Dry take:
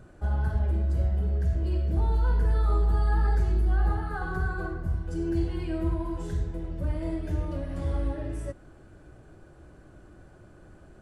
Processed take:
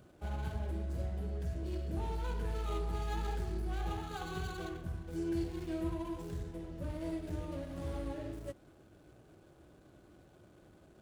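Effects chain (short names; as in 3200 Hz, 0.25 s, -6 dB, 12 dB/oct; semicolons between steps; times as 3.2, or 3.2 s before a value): median filter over 25 samples; HPF 150 Hz 6 dB/oct; high shelf 3900 Hz +9 dB; gain -5 dB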